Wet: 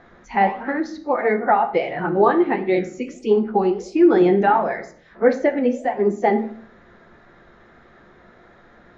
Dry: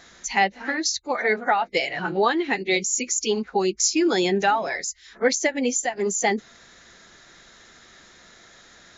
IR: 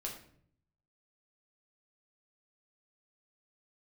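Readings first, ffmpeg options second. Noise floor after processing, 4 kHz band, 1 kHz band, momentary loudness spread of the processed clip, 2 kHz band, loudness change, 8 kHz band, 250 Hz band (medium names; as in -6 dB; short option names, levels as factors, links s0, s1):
-51 dBFS, under -10 dB, +4.5 dB, 10 LU, -3.0 dB, +3.5 dB, no reading, +6.5 dB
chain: -filter_complex "[0:a]lowpass=1200,flanger=delay=7.9:depth=9.8:regen=-75:speed=1.5:shape=sinusoidal,asplit=2[s0][s1];[1:a]atrim=start_sample=2205[s2];[s1][s2]afir=irnorm=-1:irlink=0,volume=0.841[s3];[s0][s3]amix=inputs=2:normalize=0,volume=2"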